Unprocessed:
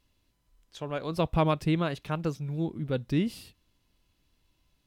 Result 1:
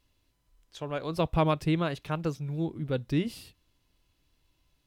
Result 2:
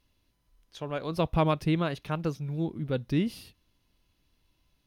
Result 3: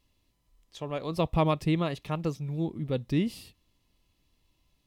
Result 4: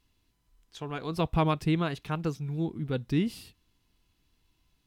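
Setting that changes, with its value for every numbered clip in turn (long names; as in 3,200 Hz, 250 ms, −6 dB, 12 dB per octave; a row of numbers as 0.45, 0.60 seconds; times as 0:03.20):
notch filter, centre frequency: 210, 7,600, 1,500, 570 Hertz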